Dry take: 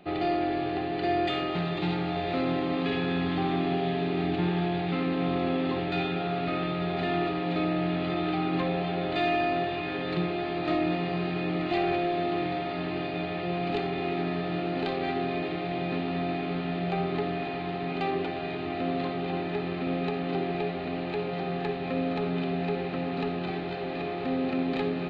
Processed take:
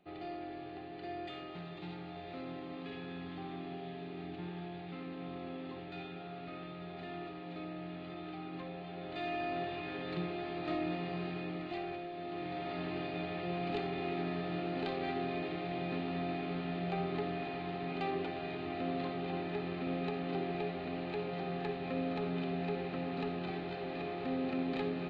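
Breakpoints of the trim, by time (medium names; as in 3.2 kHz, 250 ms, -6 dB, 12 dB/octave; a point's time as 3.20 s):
8.82 s -16 dB
9.62 s -9 dB
11.27 s -9 dB
12.11 s -16 dB
12.71 s -7 dB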